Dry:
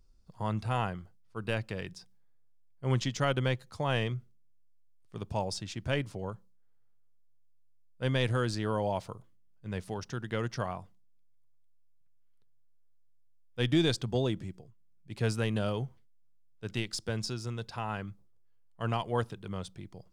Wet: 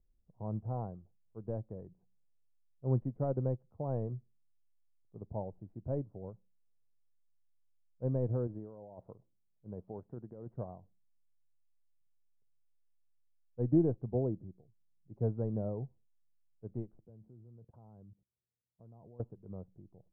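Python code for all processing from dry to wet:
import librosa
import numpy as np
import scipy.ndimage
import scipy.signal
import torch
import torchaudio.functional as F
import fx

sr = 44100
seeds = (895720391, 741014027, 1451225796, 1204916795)

y = fx.chain(x, sr, fx.low_shelf(hz=130.0, db=-8.0),
    fx.over_compress(threshold_db=-37.0, ratio=-1.0), at=(8.47, 10.54))
y = fx.chain(y, sr, fx.highpass(hz=60.0, slope=12),
    fx.low_shelf(hz=460.0, db=8.0),
    fx.level_steps(step_db=22), at=(17.05, 19.2))
y = scipy.signal.sosfilt(scipy.signal.cheby2(4, 80, 4200.0, 'lowpass', fs=sr, output='sos'), y)
y = fx.upward_expand(y, sr, threshold_db=-44.0, expansion=1.5)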